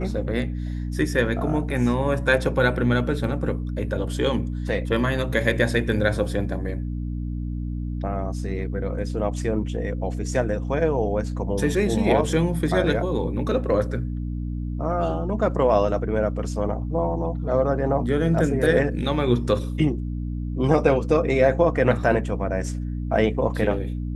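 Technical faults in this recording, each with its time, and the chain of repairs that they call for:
hum 60 Hz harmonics 5 -28 dBFS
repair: de-hum 60 Hz, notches 5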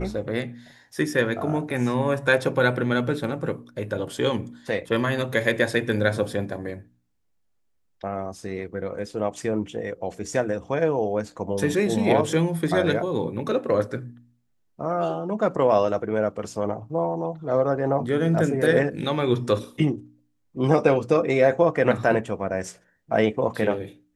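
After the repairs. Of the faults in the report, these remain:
nothing left

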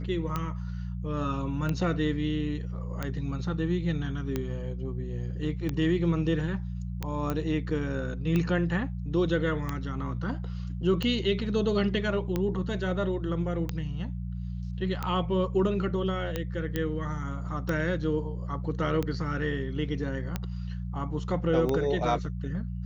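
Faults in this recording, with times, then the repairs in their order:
hum 60 Hz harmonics 3 -34 dBFS
tick 45 rpm -16 dBFS
7.30 s: pop -17 dBFS
16.76 s: pop -16 dBFS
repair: de-click; de-hum 60 Hz, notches 3

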